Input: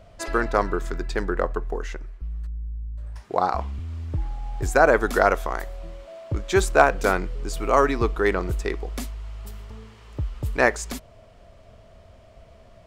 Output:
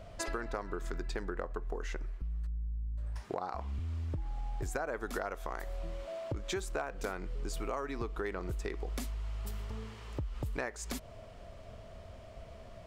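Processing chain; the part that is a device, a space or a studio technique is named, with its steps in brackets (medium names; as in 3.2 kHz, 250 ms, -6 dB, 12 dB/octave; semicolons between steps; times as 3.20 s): serial compression, peaks first (compression 4:1, threshold -31 dBFS, peak gain reduction 17.5 dB; compression 2:1, threshold -36 dBFS, peak gain reduction 6.5 dB)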